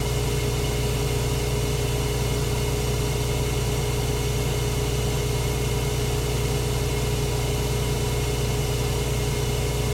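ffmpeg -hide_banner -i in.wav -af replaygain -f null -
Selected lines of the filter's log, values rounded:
track_gain = +10.8 dB
track_peak = 0.164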